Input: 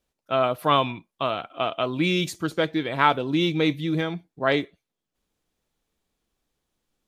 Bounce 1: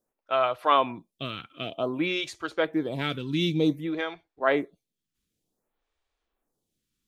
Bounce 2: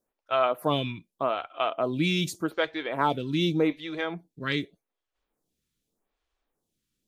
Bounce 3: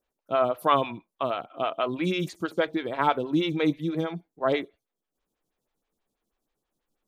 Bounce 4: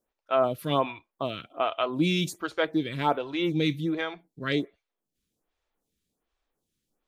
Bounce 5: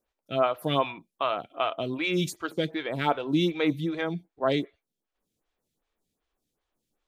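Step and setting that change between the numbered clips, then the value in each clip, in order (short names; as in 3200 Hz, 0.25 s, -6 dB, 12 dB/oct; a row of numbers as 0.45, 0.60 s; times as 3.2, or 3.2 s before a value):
photocell phaser, rate: 0.54, 0.84, 6.2, 1.3, 2.6 Hz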